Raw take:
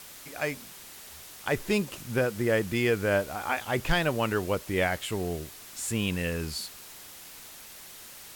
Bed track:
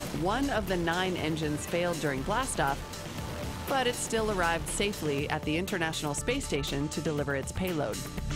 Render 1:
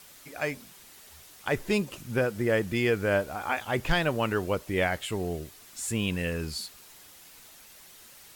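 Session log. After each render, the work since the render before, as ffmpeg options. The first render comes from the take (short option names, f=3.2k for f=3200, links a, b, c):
-af "afftdn=nr=6:nf=-47"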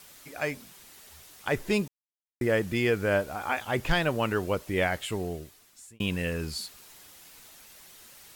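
-filter_complex "[0:a]asplit=4[a][b][c][d];[a]atrim=end=1.88,asetpts=PTS-STARTPTS,afade=t=out:st=1.876:d=0.004:c=hsin[e];[b]atrim=start=1.88:end=2.41,asetpts=PTS-STARTPTS,volume=0[f];[c]atrim=start=2.41:end=6,asetpts=PTS-STARTPTS,afade=t=in:d=0.004:c=hsin,afade=t=out:st=2.71:d=0.88[g];[d]atrim=start=6,asetpts=PTS-STARTPTS,afade=t=in:d=0.004:c=hsin[h];[e][f][g][h]concat=n=4:v=0:a=1"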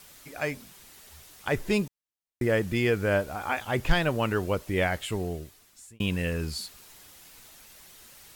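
-af "lowshelf=f=110:g=6"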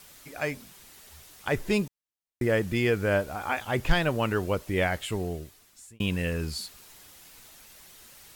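-af anull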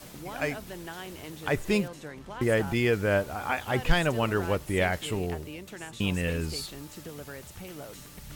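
-filter_complex "[1:a]volume=-11.5dB[a];[0:a][a]amix=inputs=2:normalize=0"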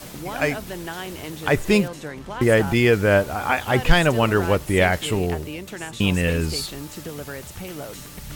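-af "volume=8dB,alimiter=limit=-3dB:level=0:latency=1"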